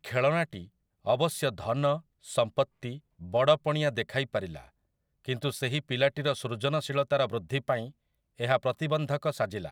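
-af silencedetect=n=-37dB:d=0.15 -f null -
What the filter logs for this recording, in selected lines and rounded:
silence_start: 0.63
silence_end: 1.06 | silence_duration: 0.44
silence_start: 1.98
silence_end: 2.29 | silence_duration: 0.31
silence_start: 2.64
silence_end: 2.83 | silence_duration: 0.19
silence_start: 2.97
silence_end: 3.22 | silence_duration: 0.25
silence_start: 4.59
silence_end: 5.28 | silence_duration: 0.69
silence_start: 7.87
silence_end: 8.40 | silence_duration: 0.52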